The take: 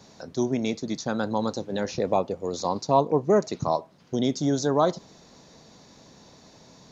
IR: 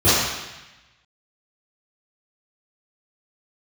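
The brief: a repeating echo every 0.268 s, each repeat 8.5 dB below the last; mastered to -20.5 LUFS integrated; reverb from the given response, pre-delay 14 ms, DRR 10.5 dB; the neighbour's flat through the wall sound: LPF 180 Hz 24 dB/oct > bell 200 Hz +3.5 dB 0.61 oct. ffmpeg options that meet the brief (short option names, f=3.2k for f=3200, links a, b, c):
-filter_complex "[0:a]aecho=1:1:268|536|804|1072:0.376|0.143|0.0543|0.0206,asplit=2[a][b];[1:a]atrim=start_sample=2205,adelay=14[c];[b][c]afir=irnorm=-1:irlink=0,volume=-34dB[d];[a][d]amix=inputs=2:normalize=0,lowpass=f=180:w=0.5412,lowpass=f=180:w=1.3066,equalizer=f=200:t=o:w=0.61:g=3.5,volume=14dB"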